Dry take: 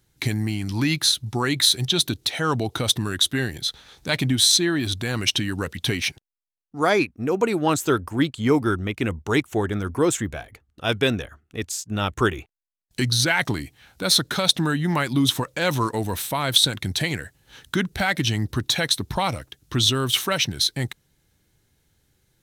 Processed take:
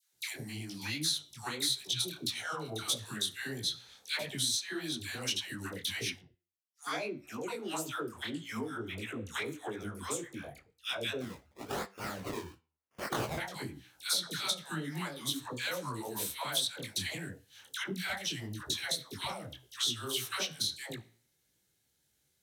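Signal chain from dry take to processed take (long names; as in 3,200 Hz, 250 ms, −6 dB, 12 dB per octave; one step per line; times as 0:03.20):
parametric band 550 Hz +2 dB
all-pass dispersion lows, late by 141 ms, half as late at 840 Hz
downward compressor 5 to 1, threshold −22 dBFS, peak gain reduction 10 dB
high-shelf EQ 2,500 Hz +9.5 dB
0:11.20–0:13.38: sample-and-hold swept by an LFO 22×, swing 100% 1 Hz
flanger 0.17 Hz, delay 9.7 ms, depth 9.2 ms, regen +81%
high-pass filter 120 Hz 6 dB per octave
micro pitch shift up and down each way 57 cents
level −5 dB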